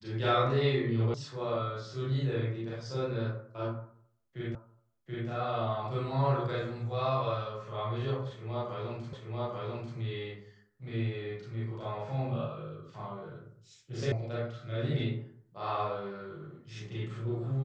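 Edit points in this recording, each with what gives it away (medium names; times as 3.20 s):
1.14 s: sound stops dead
4.55 s: repeat of the last 0.73 s
9.13 s: repeat of the last 0.84 s
14.12 s: sound stops dead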